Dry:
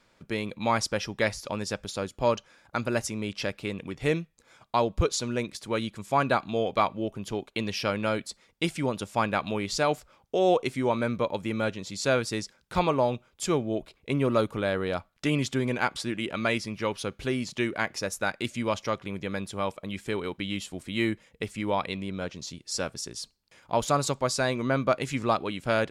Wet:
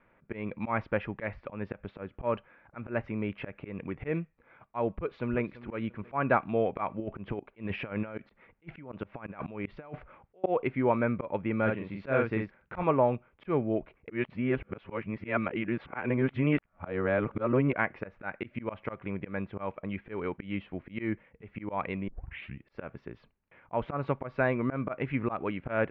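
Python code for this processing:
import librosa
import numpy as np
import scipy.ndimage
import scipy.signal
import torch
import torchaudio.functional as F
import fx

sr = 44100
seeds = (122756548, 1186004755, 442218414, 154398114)

y = fx.echo_throw(x, sr, start_s=4.95, length_s=0.58, ms=340, feedback_pct=35, wet_db=-17.0)
y = fx.over_compress(y, sr, threshold_db=-33.0, ratio=-0.5, at=(7.0, 10.44))
y = fx.doubler(y, sr, ms=45.0, db=-3.5, at=(11.65, 12.82), fade=0.02)
y = fx.edit(y, sr, fx.reverse_span(start_s=14.09, length_s=3.64),
    fx.tape_start(start_s=22.08, length_s=0.58), tone=tone)
y = fx.auto_swell(y, sr, attack_ms=140.0)
y = scipy.signal.sosfilt(scipy.signal.butter(6, 2400.0, 'lowpass', fs=sr, output='sos'), y)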